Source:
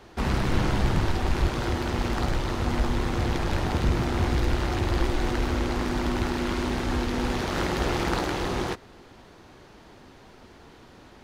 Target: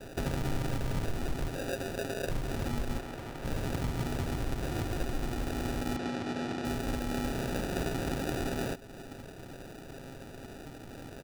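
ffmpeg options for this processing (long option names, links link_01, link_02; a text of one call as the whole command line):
ffmpeg -i in.wav -filter_complex "[0:a]acompressor=threshold=-37dB:ratio=3,asettb=1/sr,asplit=3[link_01][link_02][link_03];[link_01]atrim=end=1.554[link_04];[link_02]atrim=start=1.55:end=2.29,asetpts=PTS-STARTPTS,afade=type=in:duration=0.004:curve=qsin,afade=type=out:start_time=0.736:duration=0.004:curve=qsin,aeval=exprs='val(0)*sin(2*PI*450*n/s)':channel_layout=same[link_05];[link_03]atrim=start=2.286[link_06];[link_04][link_05]acrossfade=duration=0.004:curve1=hsin:curve2=qsin[link_07];[link_07][link_06]acrossfade=duration=0.004:curve1=qsin:curve2=hsin,aecho=1:1:7.3:0.49,acrusher=samples=41:mix=1:aa=0.000001,asettb=1/sr,asplit=3[link_08][link_09][link_10];[link_08]atrim=end=2.984[link_11];[link_09]atrim=start=2.98:end=3.45,asetpts=PTS-STARTPTS,afade=type=in:duration=0.004:curve=qsin,afade=type=out:start_time=0.466:duration=0.004:curve=qsin,acrossover=split=300|3400[link_12][link_13][link_14];[link_12]acompressor=threshold=-48dB:ratio=4[link_15];[link_13]acompressor=threshold=-44dB:ratio=4[link_16];[link_14]acompressor=threshold=-58dB:ratio=4[link_17];[link_15][link_16][link_17]amix=inputs=3:normalize=0[link_18];[link_10]atrim=start=3.446[link_19];[link_11][link_18]acrossfade=duration=0.004:curve1=hsin:curve2=qsin[link_20];[link_20][link_19]acrossfade=duration=0.004:curve1=qsin:curve2=hsin,asettb=1/sr,asplit=3[link_21][link_22][link_23];[link_21]atrim=end=5.964[link_24];[link_22]atrim=start=5.96:end=6.65,asetpts=PTS-STARTPTS,afade=type=in:duration=0.004:curve=qsin,afade=type=out:start_time=0.686:duration=0.004:curve=qsin,highpass=140,lowpass=5400[link_25];[link_23]atrim=start=6.646[link_26];[link_24][link_25]acrossfade=duration=0.004:curve1=hsin:curve2=qsin[link_27];[link_27][link_26]acrossfade=duration=0.004:curve1=qsin:curve2=hsin,volume=3.5dB" out.wav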